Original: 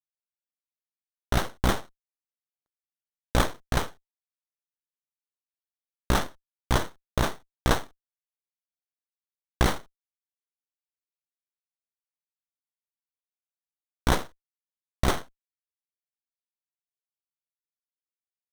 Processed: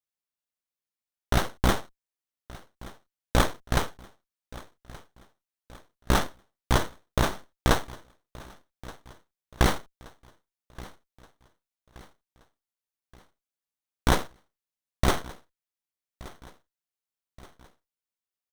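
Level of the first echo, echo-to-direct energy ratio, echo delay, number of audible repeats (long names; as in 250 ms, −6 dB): −20.5 dB, −19.5 dB, 1,175 ms, 3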